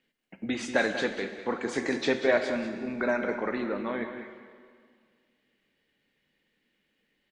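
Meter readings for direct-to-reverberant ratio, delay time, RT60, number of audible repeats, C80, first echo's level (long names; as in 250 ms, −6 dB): 6.0 dB, 190 ms, 2.0 s, 1, 7.5 dB, −11.0 dB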